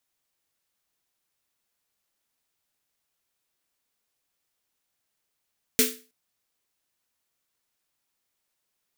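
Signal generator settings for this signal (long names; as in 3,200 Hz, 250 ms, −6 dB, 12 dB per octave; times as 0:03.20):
synth snare length 0.32 s, tones 250 Hz, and 440 Hz, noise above 1,600 Hz, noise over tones 5 dB, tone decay 0.34 s, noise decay 0.33 s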